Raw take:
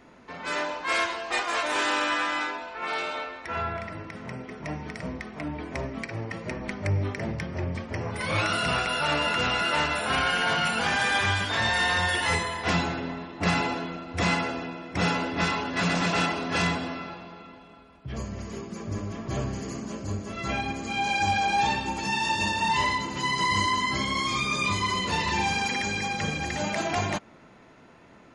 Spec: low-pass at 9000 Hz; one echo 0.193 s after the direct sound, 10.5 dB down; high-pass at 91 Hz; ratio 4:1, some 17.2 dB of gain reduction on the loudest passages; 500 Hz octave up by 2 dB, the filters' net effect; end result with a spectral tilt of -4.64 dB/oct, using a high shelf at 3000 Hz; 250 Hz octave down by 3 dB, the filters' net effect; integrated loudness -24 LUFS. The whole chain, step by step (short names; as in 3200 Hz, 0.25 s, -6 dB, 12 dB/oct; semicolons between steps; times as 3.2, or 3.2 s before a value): HPF 91 Hz; LPF 9000 Hz; bell 250 Hz -5 dB; bell 500 Hz +4 dB; high shelf 3000 Hz -5.5 dB; compressor 4:1, threshold -43 dBFS; echo 0.193 s -10.5 dB; gain +18.5 dB